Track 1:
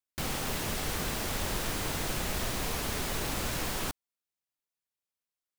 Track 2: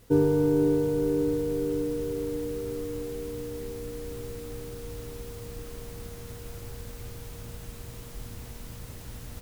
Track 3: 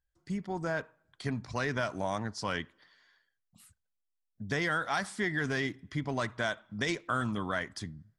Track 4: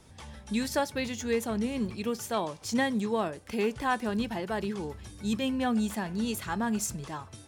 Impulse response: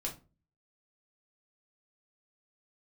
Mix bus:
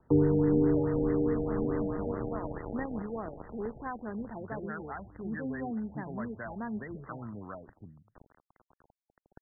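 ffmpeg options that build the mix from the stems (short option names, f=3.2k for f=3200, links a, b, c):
-filter_complex "[0:a]volume=-18.5dB[a];[1:a]highshelf=f=2.3k:g=11.5,aeval=exprs='val(0)*gte(abs(val(0)),0.0447)':c=same,volume=0.5dB[b];[2:a]volume=-8.5dB[c];[3:a]volume=-7.5dB[d];[a][b][c][d]amix=inputs=4:normalize=0,acrossover=split=370[e][f];[f]acompressor=threshold=-33dB:ratio=5[g];[e][g]amix=inputs=2:normalize=0,afftfilt=real='re*lt(b*sr/1024,820*pow(2100/820,0.5+0.5*sin(2*PI*4.7*pts/sr)))':imag='im*lt(b*sr/1024,820*pow(2100/820,0.5+0.5*sin(2*PI*4.7*pts/sr)))':win_size=1024:overlap=0.75"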